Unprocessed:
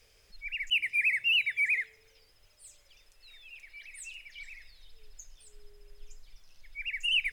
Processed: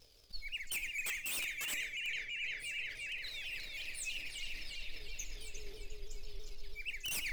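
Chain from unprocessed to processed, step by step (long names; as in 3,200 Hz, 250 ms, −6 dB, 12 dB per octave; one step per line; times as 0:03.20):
leveller curve on the samples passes 2
octave-band graphic EQ 1,000/2,000/4,000/8,000 Hz −3/−12/+7/−5 dB
on a send: feedback echo with a low-pass in the loop 353 ms, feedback 74%, low-pass 4,400 Hz, level −3 dB
on the sum: wrap-around overflow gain 21.5 dB
reversed playback
downward compressor 6 to 1, threshold −40 dBFS, peak gain reduction 14.5 dB
reversed playback
tuned comb filter 300 Hz, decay 0.5 s, harmonics all, mix 70%
pitch modulation by a square or saw wave saw down 6.1 Hz, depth 100 cents
level +11.5 dB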